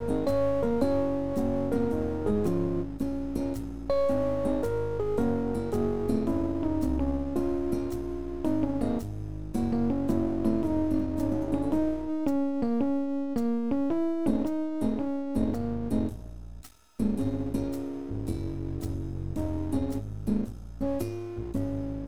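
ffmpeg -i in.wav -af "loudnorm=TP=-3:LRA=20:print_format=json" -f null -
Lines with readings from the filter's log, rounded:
"input_i" : "-29.8",
"input_tp" : "-12.3",
"input_lra" : "4.5",
"input_thresh" : "-39.9",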